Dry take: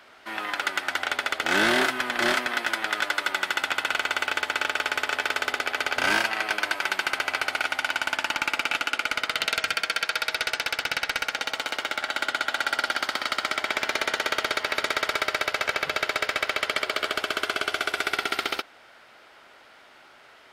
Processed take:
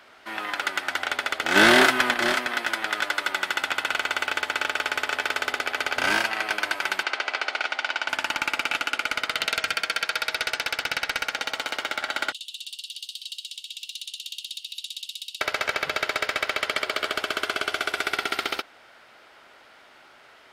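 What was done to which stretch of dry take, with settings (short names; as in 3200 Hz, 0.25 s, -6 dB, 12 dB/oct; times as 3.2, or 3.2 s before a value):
1.56–2.14 gain +6 dB
7.03–8.09 Chebyshev band-pass 390–5100 Hz
12.32–15.41 rippled Chebyshev high-pass 2700 Hz, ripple 6 dB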